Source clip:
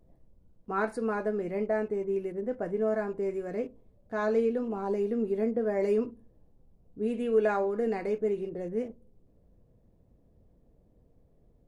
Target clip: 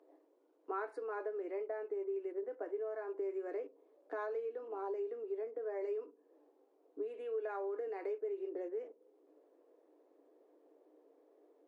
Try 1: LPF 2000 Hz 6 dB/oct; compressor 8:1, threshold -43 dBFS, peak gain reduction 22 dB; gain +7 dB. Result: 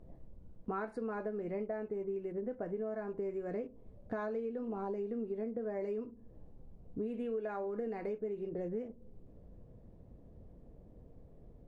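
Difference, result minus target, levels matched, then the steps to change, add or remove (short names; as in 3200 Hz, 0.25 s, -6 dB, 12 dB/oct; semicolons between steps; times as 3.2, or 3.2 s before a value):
250 Hz band +7.5 dB
add after compressor: rippled Chebyshev high-pass 290 Hz, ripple 3 dB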